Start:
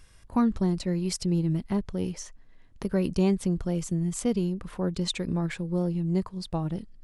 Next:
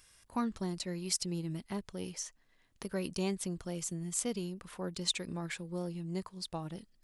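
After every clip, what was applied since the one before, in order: tilt +2.5 dB/oct; gain -6 dB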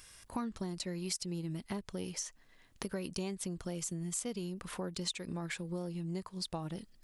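compressor 4:1, threshold -43 dBFS, peak gain reduction 14 dB; gain +6.5 dB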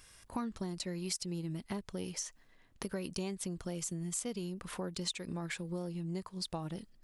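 mismatched tape noise reduction decoder only

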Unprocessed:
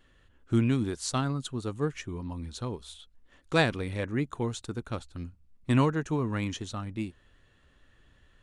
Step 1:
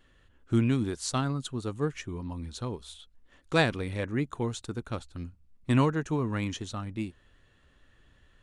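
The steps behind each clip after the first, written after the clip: nothing audible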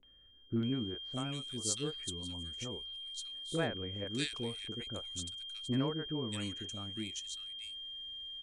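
graphic EQ 125/500/1000/8000 Hz -5/+3/-8/+9 dB; whine 3200 Hz -36 dBFS; three bands offset in time lows, mids, highs 30/630 ms, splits 450/2000 Hz; gain -6.5 dB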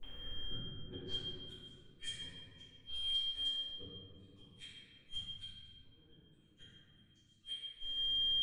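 compressor 12:1, threshold -49 dBFS, peak gain reduction 21.5 dB; flipped gate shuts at -45 dBFS, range -40 dB; reverb RT60 2.3 s, pre-delay 4 ms, DRR -14 dB; gain +4.5 dB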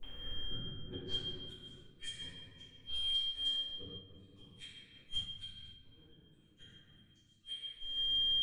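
noise-modulated level, depth 60%; gain +5.5 dB

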